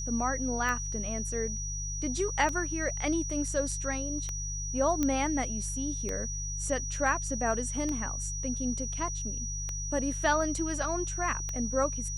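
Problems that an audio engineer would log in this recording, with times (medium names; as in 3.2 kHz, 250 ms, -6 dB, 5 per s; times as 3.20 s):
hum 50 Hz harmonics 3 -37 dBFS
tick 33 1/3 rpm -20 dBFS
whine 5.8 kHz -36 dBFS
5.03 s: pop -15 dBFS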